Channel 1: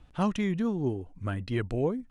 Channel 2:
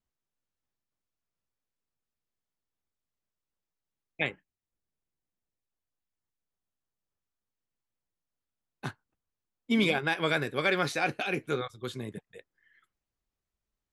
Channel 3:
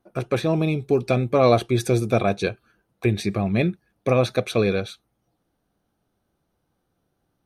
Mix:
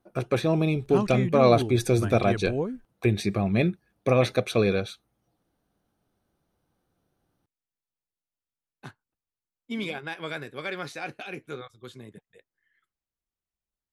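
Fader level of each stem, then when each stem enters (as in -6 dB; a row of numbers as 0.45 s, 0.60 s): -0.5 dB, -6.5 dB, -2.0 dB; 0.75 s, 0.00 s, 0.00 s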